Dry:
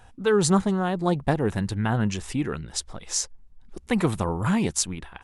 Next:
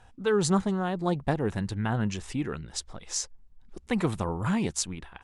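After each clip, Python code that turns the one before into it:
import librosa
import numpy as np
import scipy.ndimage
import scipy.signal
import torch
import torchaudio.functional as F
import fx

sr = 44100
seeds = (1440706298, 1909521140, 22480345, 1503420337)

y = scipy.signal.sosfilt(scipy.signal.butter(2, 9400.0, 'lowpass', fs=sr, output='sos'), x)
y = y * 10.0 ** (-4.0 / 20.0)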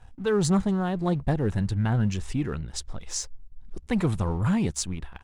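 y = fx.low_shelf(x, sr, hz=140.0, db=11.5)
y = fx.leveller(y, sr, passes=1)
y = y * 10.0 ** (-4.0 / 20.0)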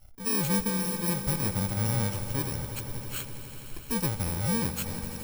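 y = fx.bit_reversed(x, sr, seeds[0], block=64)
y = fx.echo_swell(y, sr, ms=83, loudest=5, wet_db=-16.0)
y = y * 10.0 ** (-4.5 / 20.0)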